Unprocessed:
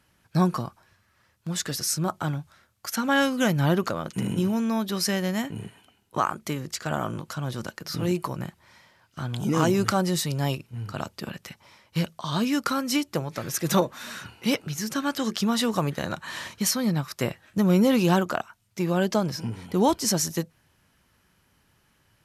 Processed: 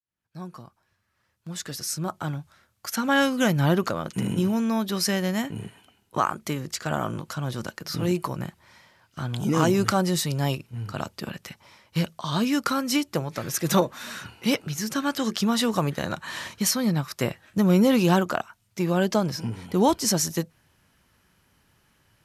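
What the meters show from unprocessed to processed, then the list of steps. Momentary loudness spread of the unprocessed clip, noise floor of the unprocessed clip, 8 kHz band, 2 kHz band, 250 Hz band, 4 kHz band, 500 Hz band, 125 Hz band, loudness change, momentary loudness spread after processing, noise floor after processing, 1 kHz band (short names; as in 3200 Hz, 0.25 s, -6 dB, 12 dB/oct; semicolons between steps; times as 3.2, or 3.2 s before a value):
13 LU, -66 dBFS, +0.5 dB, +1.0 dB, +1.0 dB, +0.5 dB, +1.0 dB, +0.5 dB, +1.0 dB, 15 LU, -71 dBFS, +0.5 dB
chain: opening faded in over 3.21 s; gain +1 dB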